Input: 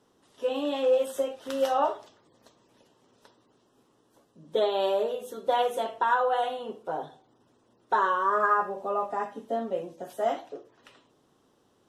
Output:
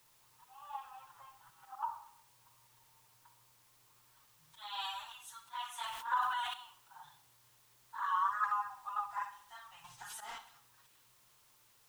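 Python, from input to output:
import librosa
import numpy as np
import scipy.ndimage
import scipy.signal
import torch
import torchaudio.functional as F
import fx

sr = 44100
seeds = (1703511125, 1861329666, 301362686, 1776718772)

p1 = scipy.signal.sosfilt(scipy.signal.cheby1(5, 1.0, [130.0, 860.0], 'bandstop', fs=sr, output='sos'), x)
p2 = fx.auto_swell(p1, sr, attack_ms=247.0)
p3 = fx.rider(p2, sr, range_db=4, speed_s=2.0)
p4 = p2 + F.gain(torch.from_numpy(p3), 1.0).numpy()
p5 = fx.leveller(p4, sr, passes=3, at=(9.84, 10.38))
p6 = fx.filter_sweep_lowpass(p5, sr, from_hz=880.0, to_hz=10000.0, start_s=3.85, end_s=4.47, q=1.1)
p7 = fx.env_flanger(p6, sr, rest_ms=6.7, full_db=-15.0)
p8 = fx.quant_dither(p7, sr, seeds[0], bits=10, dither='triangular')
p9 = p8 + fx.echo_feedback(p8, sr, ms=66, feedback_pct=51, wet_db=-14.5, dry=0)
p10 = fx.sustainer(p9, sr, db_per_s=37.0, at=(5.78, 6.54))
y = F.gain(torch.from_numpy(p10), -8.0).numpy()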